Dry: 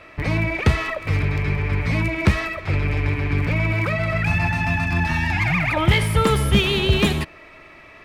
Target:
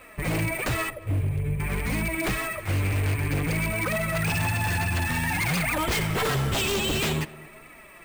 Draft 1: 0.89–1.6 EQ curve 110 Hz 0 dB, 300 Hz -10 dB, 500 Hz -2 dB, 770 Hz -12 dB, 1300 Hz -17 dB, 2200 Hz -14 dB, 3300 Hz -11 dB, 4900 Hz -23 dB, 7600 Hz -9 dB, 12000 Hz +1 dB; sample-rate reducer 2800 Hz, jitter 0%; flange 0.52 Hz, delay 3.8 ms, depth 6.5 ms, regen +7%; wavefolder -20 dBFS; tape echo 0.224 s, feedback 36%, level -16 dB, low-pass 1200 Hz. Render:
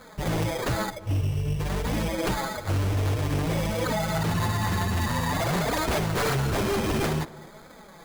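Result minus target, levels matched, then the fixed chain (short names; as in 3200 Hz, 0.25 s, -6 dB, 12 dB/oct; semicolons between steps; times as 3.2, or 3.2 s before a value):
sample-rate reducer: distortion +7 dB
0.89–1.6 EQ curve 110 Hz 0 dB, 300 Hz -10 dB, 500 Hz -2 dB, 770 Hz -12 dB, 1300 Hz -17 dB, 2200 Hz -14 dB, 3300 Hz -11 dB, 4900 Hz -23 dB, 7600 Hz -9 dB, 12000 Hz +1 dB; sample-rate reducer 11000 Hz, jitter 0%; flange 0.52 Hz, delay 3.8 ms, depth 6.5 ms, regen +7%; wavefolder -20 dBFS; tape echo 0.224 s, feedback 36%, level -16 dB, low-pass 1200 Hz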